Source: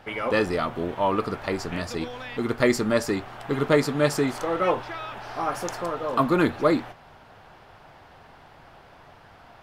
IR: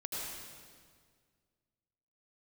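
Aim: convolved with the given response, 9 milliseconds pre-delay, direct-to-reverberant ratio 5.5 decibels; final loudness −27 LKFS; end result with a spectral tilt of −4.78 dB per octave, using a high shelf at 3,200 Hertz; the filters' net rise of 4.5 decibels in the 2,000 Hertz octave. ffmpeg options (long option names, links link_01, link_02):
-filter_complex "[0:a]equalizer=frequency=2000:width_type=o:gain=8,highshelf=frequency=3200:gain=-8.5,asplit=2[link_01][link_02];[1:a]atrim=start_sample=2205,adelay=9[link_03];[link_02][link_03]afir=irnorm=-1:irlink=0,volume=-7.5dB[link_04];[link_01][link_04]amix=inputs=2:normalize=0,volume=-3.5dB"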